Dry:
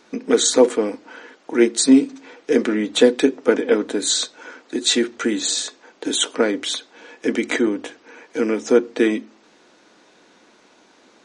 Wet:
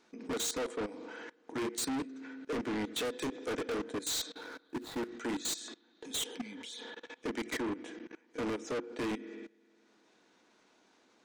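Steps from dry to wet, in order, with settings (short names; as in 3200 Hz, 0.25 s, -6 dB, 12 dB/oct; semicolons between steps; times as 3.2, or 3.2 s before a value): 4.35–5.09 median filter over 15 samples; gate -41 dBFS, range -7 dB; 1.83–2.5 bell 1500 Hz +11.5 dB 0.48 oct; 6.07–7.06 spectral repair 290–2000 Hz both; notch 560 Hz, Q 14; spring tank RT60 1.6 s, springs 30/42 ms, chirp 65 ms, DRR 15.5 dB; hard clip -13.5 dBFS, distortion -9 dB; level quantiser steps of 22 dB; 3.05–3.84 high shelf 4900 Hz +11 dB; soft clip -31 dBFS, distortion -7 dB; gain -1.5 dB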